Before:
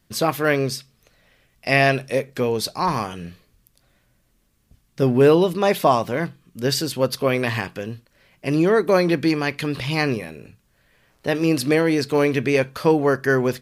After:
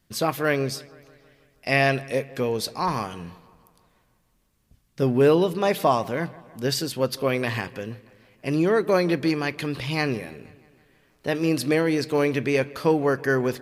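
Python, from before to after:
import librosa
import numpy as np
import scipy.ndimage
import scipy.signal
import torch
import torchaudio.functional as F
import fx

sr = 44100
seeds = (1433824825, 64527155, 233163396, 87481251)

y = fx.echo_wet_lowpass(x, sr, ms=161, feedback_pct=60, hz=3200.0, wet_db=-21.5)
y = y * 10.0 ** (-3.5 / 20.0)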